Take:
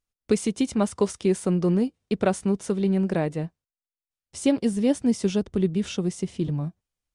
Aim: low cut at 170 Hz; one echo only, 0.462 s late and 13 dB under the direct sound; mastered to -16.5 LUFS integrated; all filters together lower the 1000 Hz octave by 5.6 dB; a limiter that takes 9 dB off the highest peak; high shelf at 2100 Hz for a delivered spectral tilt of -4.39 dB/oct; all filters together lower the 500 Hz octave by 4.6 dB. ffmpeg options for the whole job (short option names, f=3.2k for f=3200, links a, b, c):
-af "highpass=170,equalizer=f=500:t=o:g=-5,equalizer=f=1k:t=o:g=-7.5,highshelf=f=2.1k:g=8,alimiter=limit=-19.5dB:level=0:latency=1,aecho=1:1:462:0.224,volume=13dB"